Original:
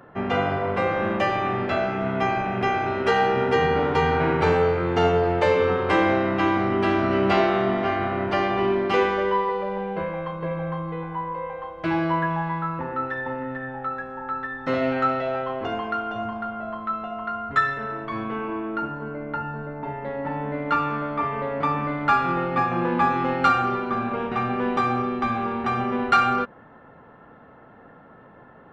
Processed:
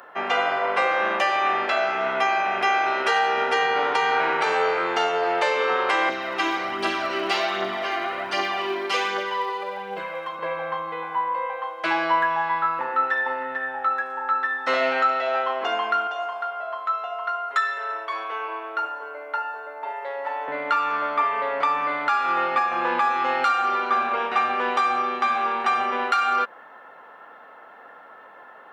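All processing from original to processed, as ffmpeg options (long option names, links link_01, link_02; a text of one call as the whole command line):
ffmpeg -i in.wav -filter_complex "[0:a]asettb=1/sr,asplit=3[link_01][link_02][link_03];[link_01]atrim=end=6.094[link_04];[link_02]atrim=start=6.09:end=10.39,asetpts=PTS-STARTPTS,afade=type=in:duration=0.004:curve=qsin,afade=type=out:start_time=4.296:duration=0.004:curve=qsin,acrossover=split=320|3000[link_05][link_06][link_07];[link_06]acompressor=threshold=-44dB:ratio=1.5:attack=3.2:release=140:knee=2.83:detection=peak[link_08];[link_05][link_08][link_07]amix=inputs=3:normalize=0,aphaser=in_gain=1:out_gain=1:delay=3.1:decay=0.43:speed=1.3:type=triangular[link_09];[link_03]atrim=start=10.386[link_10];[link_04][link_09]acrossfade=duration=0.004:curve1=hsin:curve2=qsin[link_11];[link_11][link_10]acrossfade=duration=0.004:curve1=qsin:curve2=hsin,asettb=1/sr,asplit=3[link_12][link_13][link_14];[link_12]atrim=end=16.074[link_15];[link_13]atrim=start=16.07:end=20.48,asetpts=PTS-STARTPTS,afade=type=in:duration=0.004:curve=qsin,afade=type=out:start_time=4.406:duration=0.004:curve=qsin,highpass=frequency=420:width=0.5412,highpass=frequency=420:width=1.3066,equalizer=frequency=1700:width_type=o:width=2.4:gain=-4[link_16];[link_14]atrim=start=20.476[link_17];[link_15][link_16]acrossfade=duration=0.004:curve1=hsin:curve2=qsin[link_18];[link_18][link_17]acrossfade=duration=0.004:curve1=qsin:curve2=hsin,highpass=710,highshelf=frequency=4700:gain=7,alimiter=limit=-18dB:level=0:latency=1:release=321,volume=6.5dB" out.wav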